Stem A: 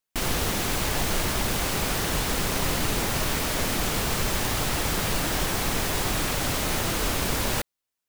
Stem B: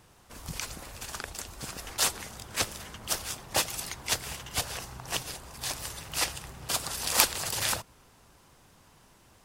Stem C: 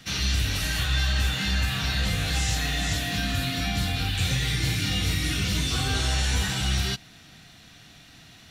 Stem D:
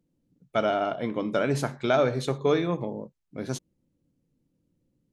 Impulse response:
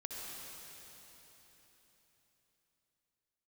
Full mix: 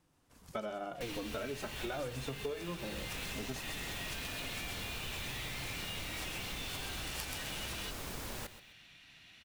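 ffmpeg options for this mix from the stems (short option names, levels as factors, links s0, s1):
-filter_complex "[0:a]adelay=850,volume=0.168,asplit=2[s0][s1];[s1]volume=0.188[s2];[1:a]volume=0.141,asplit=2[s3][s4];[s4]volume=0.668[s5];[2:a]equalizer=f=2500:t=o:w=1.4:g=14,alimiter=limit=0.168:level=0:latency=1,adelay=950,volume=0.15[s6];[3:a]asplit=2[s7][s8];[s8]adelay=3.7,afreqshift=-0.97[s9];[s7][s9]amix=inputs=2:normalize=1,volume=0.891[s10];[s2][s5]amix=inputs=2:normalize=0,aecho=0:1:130|260|390|520:1|0.28|0.0784|0.022[s11];[s0][s3][s6][s10][s11]amix=inputs=5:normalize=0,acompressor=threshold=0.0141:ratio=6"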